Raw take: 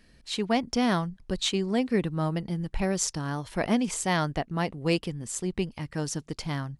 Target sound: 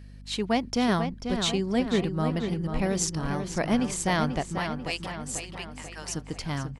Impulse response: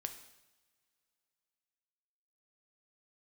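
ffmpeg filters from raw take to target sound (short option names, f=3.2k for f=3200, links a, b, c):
-filter_complex "[0:a]asettb=1/sr,asplit=3[a][b][c];[a]atrim=end=4.584[d];[b]atrim=start=4.58:end=6.1,asetpts=PTS-STARTPTS,afade=t=in:d=0.004:c=qsin,afade=t=out:st=1.516:d=0.004:c=qsin,highpass=1k[e];[c]atrim=start=6.096[f];[d][e]acrossfade=d=0.004:c1=hsin:c2=qsin[g];[g][f]acrossfade=d=0.004:c1=qsin:c2=hsin,asplit=2[h][i];[i]adelay=490,lowpass=f=4k:p=1,volume=-7dB,asplit=2[j][k];[k]adelay=490,lowpass=f=4k:p=1,volume=0.54,asplit=2[l][m];[m]adelay=490,lowpass=f=4k:p=1,volume=0.54,asplit=2[n][o];[o]adelay=490,lowpass=f=4k:p=1,volume=0.54,asplit=2[p][q];[q]adelay=490,lowpass=f=4k:p=1,volume=0.54,asplit=2[r][s];[s]adelay=490,lowpass=f=4k:p=1,volume=0.54,asplit=2[t][u];[u]adelay=490,lowpass=f=4k:p=1,volume=0.54[v];[h][j][l][n][p][r][t][v]amix=inputs=8:normalize=0,aeval=exprs='val(0)+0.00631*(sin(2*PI*50*n/s)+sin(2*PI*2*50*n/s)/2+sin(2*PI*3*50*n/s)/3+sin(2*PI*4*50*n/s)/4+sin(2*PI*5*50*n/s)/5)':c=same"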